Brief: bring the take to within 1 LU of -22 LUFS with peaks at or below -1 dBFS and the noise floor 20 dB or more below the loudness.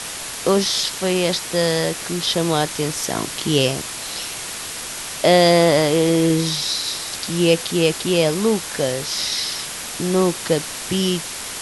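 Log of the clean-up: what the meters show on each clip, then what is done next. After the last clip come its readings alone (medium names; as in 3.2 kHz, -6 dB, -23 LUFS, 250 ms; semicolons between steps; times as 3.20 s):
noise floor -30 dBFS; noise floor target -40 dBFS; loudness -19.5 LUFS; peak level -2.5 dBFS; loudness target -22.0 LUFS
-> noise print and reduce 10 dB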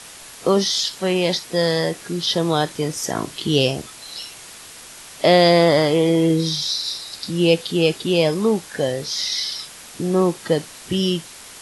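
noise floor -40 dBFS; loudness -19.5 LUFS; peak level -2.5 dBFS; loudness target -22.0 LUFS
-> trim -2.5 dB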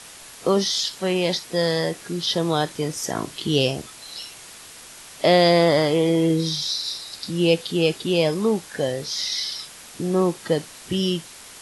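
loudness -22.0 LUFS; peak level -5.0 dBFS; noise floor -43 dBFS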